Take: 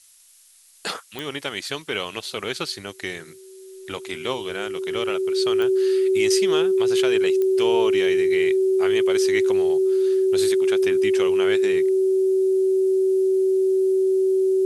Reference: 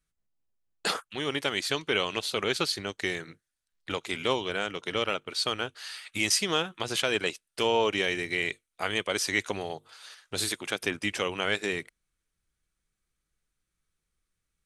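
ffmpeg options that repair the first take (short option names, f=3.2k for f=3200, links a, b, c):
-af "adeclick=t=4,bandreject=f=380:w=30,afftdn=nr=30:nf=-43"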